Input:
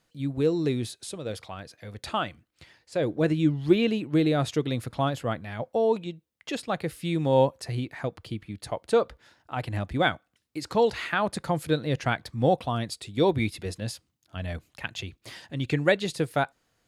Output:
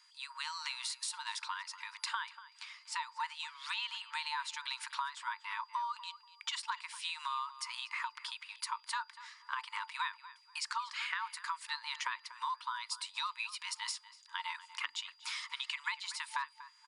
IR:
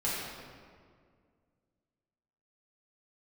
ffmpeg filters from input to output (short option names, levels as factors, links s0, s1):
-filter_complex "[0:a]afftfilt=real='re*between(b*sr/4096,610,9800)':imag='im*between(b*sr/4096,610,9800)':win_size=4096:overlap=0.75,acompressor=threshold=0.00891:ratio=8,afreqshift=280,aeval=exprs='val(0)+0.000316*sin(2*PI*4800*n/s)':c=same,asplit=2[s0][s1];[s1]adelay=241,lowpass=f=3100:p=1,volume=0.178,asplit=2[s2][s3];[s3]adelay=241,lowpass=f=3100:p=1,volume=0.25,asplit=2[s4][s5];[s5]adelay=241,lowpass=f=3100:p=1,volume=0.25[s6];[s2][s4][s6]amix=inputs=3:normalize=0[s7];[s0][s7]amix=inputs=2:normalize=0,volume=1.88"